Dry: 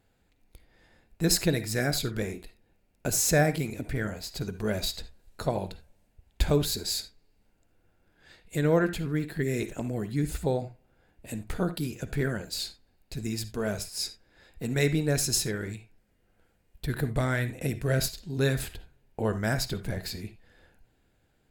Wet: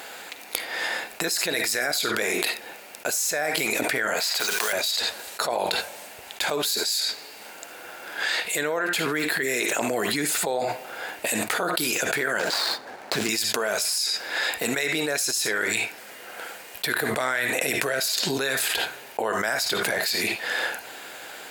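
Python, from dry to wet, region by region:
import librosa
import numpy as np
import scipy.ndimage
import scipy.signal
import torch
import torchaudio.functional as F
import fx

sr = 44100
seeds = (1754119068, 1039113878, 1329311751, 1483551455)

y = fx.chain(x, sr, fx.quant_companded(bits=6),
    fx.highpass(hz=1200.0, slope=6),
    fx.band_squash(depth_pct=70), at=(4.2, 4.73))
y = fx.chain(y, sr, fx.median_filter(points=15),
    fx.high_shelf(hz=9900.0, db=-7.0),
    fx.band_squash(depth_pct=40), at=(12.39, 13.29))
y = scipy.signal.sosfilt(scipy.signal.butter(2, 720.0, 'highpass', fs=sr, output='sos'), y)
y = fx.env_flatten(y, sr, amount_pct=100)
y = y * 10.0 ** (-3.5 / 20.0)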